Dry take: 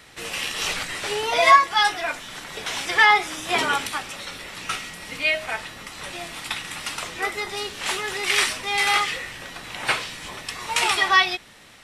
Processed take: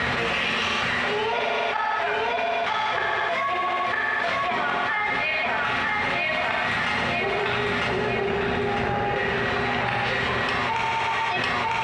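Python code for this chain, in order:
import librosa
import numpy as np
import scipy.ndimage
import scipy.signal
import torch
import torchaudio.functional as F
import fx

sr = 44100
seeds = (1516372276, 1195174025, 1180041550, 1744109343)

y = fx.median_filter(x, sr, points=41, at=(6.92, 9.16))
y = fx.echo_feedback(y, sr, ms=951, feedback_pct=46, wet_db=-3.0)
y = fx.gate_flip(y, sr, shuts_db=-11.0, range_db=-41)
y = scipy.signal.sosfilt(scipy.signal.butter(2, 2200.0, 'lowpass', fs=sr, output='sos'), y)
y = fx.rider(y, sr, range_db=10, speed_s=0.5)
y = scipy.signal.sosfilt(scipy.signal.butter(2, 69.0, 'highpass', fs=sr, output='sos'), y)
y = fx.peak_eq(y, sr, hz=320.0, db=-13.5, octaves=0.25)
y = fx.rev_fdn(y, sr, rt60_s=1.6, lf_ratio=0.75, hf_ratio=1.0, size_ms=25.0, drr_db=0.5)
y = fx.env_flatten(y, sr, amount_pct=100)
y = y * 10.0 ** (-3.5 / 20.0)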